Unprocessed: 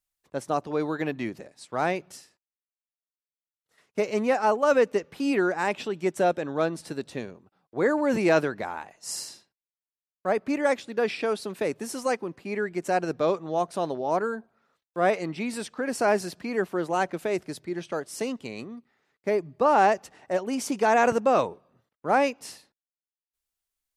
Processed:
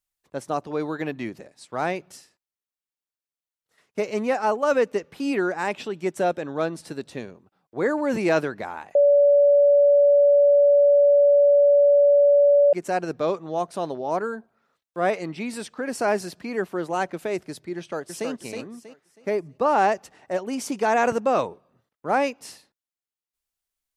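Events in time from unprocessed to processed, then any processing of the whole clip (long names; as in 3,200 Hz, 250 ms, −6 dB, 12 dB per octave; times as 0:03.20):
0:08.95–0:12.73: beep over 573 Hz −12.5 dBFS
0:17.77–0:18.29: delay throw 320 ms, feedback 30%, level −5 dB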